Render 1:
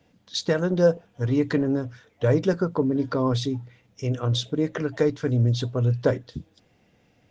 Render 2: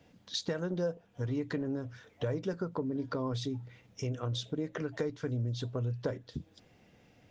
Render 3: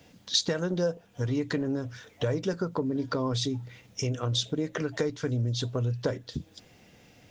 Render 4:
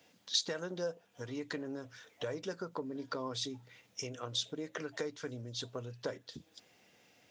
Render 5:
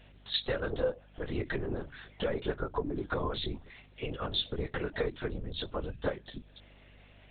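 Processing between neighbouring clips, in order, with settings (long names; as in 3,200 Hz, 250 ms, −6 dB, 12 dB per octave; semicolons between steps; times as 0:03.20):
downward compressor 3 to 1, threshold −35 dBFS, peak gain reduction 15.5 dB
high-shelf EQ 3,600 Hz +9.5 dB; level +5 dB
high-pass filter 490 Hz 6 dB per octave; level −6 dB
linear-prediction vocoder at 8 kHz whisper; mains hum 50 Hz, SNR 23 dB; level +6.5 dB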